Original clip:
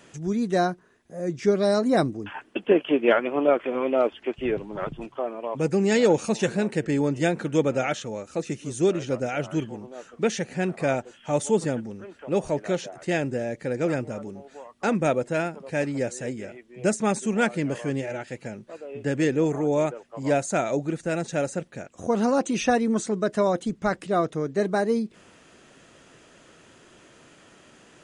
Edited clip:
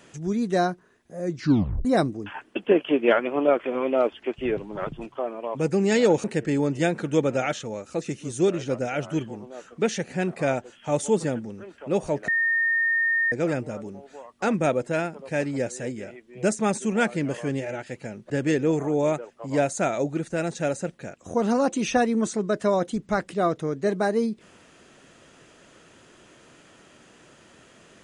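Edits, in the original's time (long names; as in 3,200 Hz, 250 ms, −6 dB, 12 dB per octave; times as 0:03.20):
0:01.36: tape stop 0.49 s
0:06.24–0:06.65: remove
0:12.69–0:13.73: beep over 1,830 Hz −19.5 dBFS
0:18.71–0:19.03: remove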